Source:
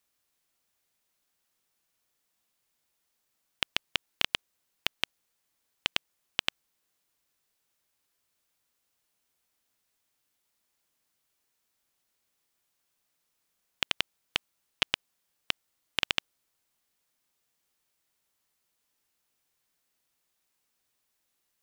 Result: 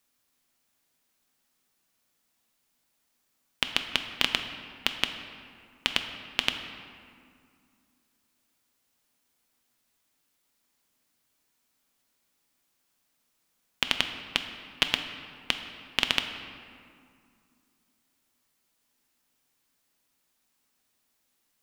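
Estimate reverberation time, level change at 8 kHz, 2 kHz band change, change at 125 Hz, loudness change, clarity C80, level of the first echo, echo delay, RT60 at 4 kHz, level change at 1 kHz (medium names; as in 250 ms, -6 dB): 2.3 s, +3.5 dB, +4.0 dB, +4.5 dB, +3.5 dB, 8.5 dB, no echo, no echo, 1.3 s, +4.0 dB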